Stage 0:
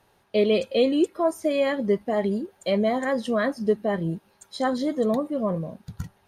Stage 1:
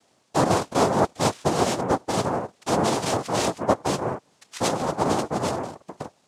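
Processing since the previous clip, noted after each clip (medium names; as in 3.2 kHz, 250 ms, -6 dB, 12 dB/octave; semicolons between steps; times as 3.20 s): noise-vocoded speech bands 2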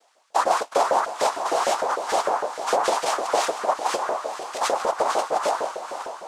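echo that smears into a reverb 496 ms, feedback 52%, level -10 dB; peak limiter -13 dBFS, peak gain reduction 8 dB; LFO high-pass saw up 6.6 Hz 460–1600 Hz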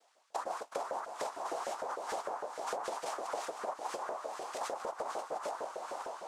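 dynamic bell 3.4 kHz, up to -4 dB, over -41 dBFS, Q 0.71; compression 5:1, threshold -28 dBFS, peak gain reduction 11.5 dB; trim -7.5 dB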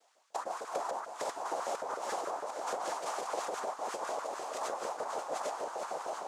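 chunks repeated in reverse 627 ms, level -2.5 dB; high-pass 78 Hz; peaking EQ 6.8 kHz +3 dB 0.36 oct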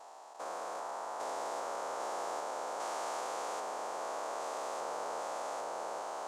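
spectrogram pixelated in time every 400 ms; trim +1 dB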